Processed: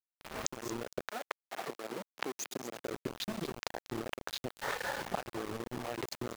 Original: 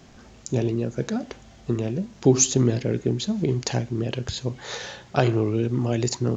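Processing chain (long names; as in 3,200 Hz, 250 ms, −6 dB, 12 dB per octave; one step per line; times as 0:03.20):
adaptive Wiener filter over 15 samples
camcorder AGC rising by 74 dB per second
low-pass filter 1,300 Hz 12 dB per octave
first difference
reverb whose tail is shaped and stops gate 240 ms rising, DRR 11.5 dB
reverb reduction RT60 1.9 s
downward compressor 3 to 1, threshold −48 dBFS, peak gain reduction 12 dB
repeating echo 231 ms, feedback 35%, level −12.5 dB
centre clipping without the shift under −49.5 dBFS
0:01.09–0:02.85: high-pass filter 470 Hz → 180 Hz 12 dB per octave
level +13.5 dB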